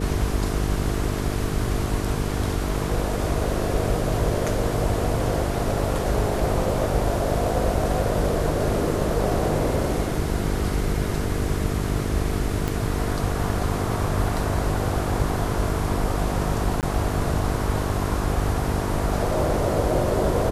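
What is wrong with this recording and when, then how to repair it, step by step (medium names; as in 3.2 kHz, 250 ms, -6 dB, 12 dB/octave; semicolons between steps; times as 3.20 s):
buzz 50 Hz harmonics 9 -28 dBFS
12.68 s: pop -12 dBFS
16.81–16.83 s: dropout 18 ms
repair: de-click; de-hum 50 Hz, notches 9; interpolate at 16.81 s, 18 ms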